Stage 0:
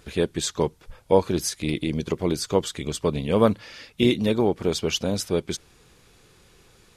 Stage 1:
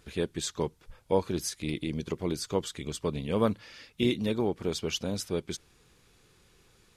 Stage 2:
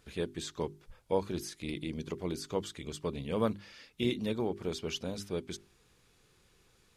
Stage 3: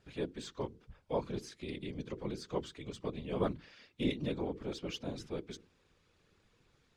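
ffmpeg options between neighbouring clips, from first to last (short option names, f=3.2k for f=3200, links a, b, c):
-af "equalizer=f=630:w=1.5:g=-2.5,volume=-6.5dB"
-filter_complex "[0:a]bandreject=f=50:t=h:w=6,bandreject=f=100:t=h:w=6,bandreject=f=150:t=h:w=6,bandreject=f=200:t=h:w=6,bandreject=f=250:t=h:w=6,bandreject=f=300:t=h:w=6,bandreject=f=350:t=h:w=6,bandreject=f=400:t=h:w=6,acrossover=split=4100[a][b];[b]alimiter=level_in=8dB:limit=-24dB:level=0:latency=1:release=99,volume=-8dB[c];[a][c]amix=inputs=2:normalize=0,volume=-4dB"
-filter_complex "[0:a]acrossover=split=620[a][b];[b]adynamicsmooth=sensitivity=4.5:basefreq=5.9k[c];[a][c]amix=inputs=2:normalize=0,afftfilt=real='hypot(re,im)*cos(2*PI*random(0))':imag='hypot(re,im)*sin(2*PI*random(1))':win_size=512:overlap=0.75,volume=3dB"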